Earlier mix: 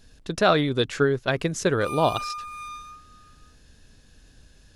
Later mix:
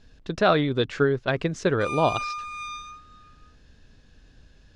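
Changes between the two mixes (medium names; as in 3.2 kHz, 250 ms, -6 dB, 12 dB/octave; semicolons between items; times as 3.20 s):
background: add frequency weighting ITU-R 468; master: add distance through air 120 m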